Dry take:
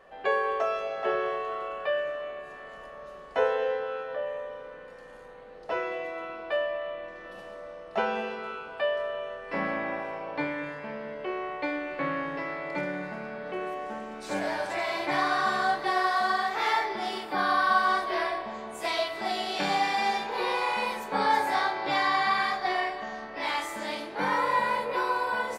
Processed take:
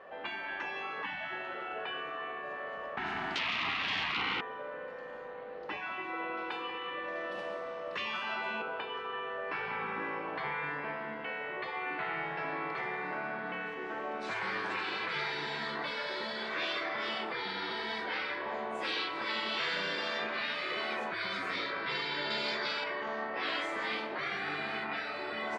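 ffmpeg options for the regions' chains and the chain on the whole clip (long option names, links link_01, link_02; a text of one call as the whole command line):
ffmpeg -i in.wav -filter_complex "[0:a]asettb=1/sr,asplit=3[link_01][link_02][link_03];[link_01]atrim=end=2.974[link_04];[link_02]atrim=start=2.97:end=4.41,asetpts=PTS-STARTPTS,afade=type=in:duration=0.004:curve=qsin,afade=type=out:start_time=1.436:duration=0.004:curve=qsin,acompressor=threshold=-30dB:ratio=16:attack=3.2:release=140:knee=1:detection=peak,aeval=exprs='val(0)+0.00501*sin(2*PI*500*n/s)':channel_layout=same,aeval=exprs='0.0668*sin(PI/2*4.47*val(0)/0.0668)':channel_layout=same[link_05];[link_03]atrim=start=4.406[link_06];[link_04][link_05]acrossfade=duration=0.004:curve1=hsin:curve2=qsin[link_07];[link_07][link_06]acrossfade=duration=0.004:curve1=qsin:curve2=hsin,asettb=1/sr,asplit=3[link_08][link_09][link_10];[link_08]atrim=end=6.374[link_11];[link_09]atrim=start=6.37:end=8.62,asetpts=PTS-STARTPTS,afade=type=in:duration=0.004:curve=qsin,afade=type=out:start_time=2.246:duration=0.004:curve=qsin,aemphasis=mode=production:type=75kf,asplit=2[link_12][link_13];[link_13]adelay=191,lowpass=frequency=1200:poles=1,volume=-10.5dB,asplit=2[link_14][link_15];[link_15]adelay=191,lowpass=frequency=1200:poles=1,volume=0.52,asplit=2[link_16][link_17];[link_17]adelay=191,lowpass=frequency=1200:poles=1,volume=0.52,asplit=2[link_18][link_19];[link_19]adelay=191,lowpass=frequency=1200:poles=1,volume=0.52,asplit=2[link_20][link_21];[link_21]adelay=191,lowpass=frequency=1200:poles=1,volume=0.52,asplit=2[link_22][link_23];[link_23]adelay=191,lowpass=frequency=1200:poles=1,volume=0.52[link_24];[link_12][link_14][link_16][link_18][link_20][link_22][link_24]amix=inputs=7:normalize=0,atrim=end_sample=99225[link_25];[link_10]atrim=start=8.616[link_26];[link_11][link_25]acrossfade=duration=0.004:curve1=hsin:curve2=qsin[link_27];[link_27][link_26]acrossfade=duration=0.004:curve1=qsin:curve2=hsin,asettb=1/sr,asplit=3[link_28][link_29][link_30];[link_28]atrim=end=22.304[link_31];[link_29]atrim=start=22.3:end=22.84,asetpts=PTS-STARTPTS,afade=type=in:duration=0.004:curve=qsin,afade=type=out:start_time=0.536:duration=0.004:curve=qsin,lowpass=frequency=8100:width=0.5412,lowpass=frequency=8100:width=1.3066,aemphasis=mode=production:type=75kf[link_32];[link_30]atrim=start=22.836[link_33];[link_31][link_32]acrossfade=duration=0.004:curve1=hsin:curve2=qsin[link_34];[link_34][link_33]acrossfade=duration=0.004:curve1=qsin:curve2=hsin,lowpass=2800,afftfilt=real='re*lt(hypot(re,im),0.0631)':imag='im*lt(hypot(re,im),0.0631)':win_size=1024:overlap=0.75,highpass=frequency=250:poles=1,volume=4.5dB" out.wav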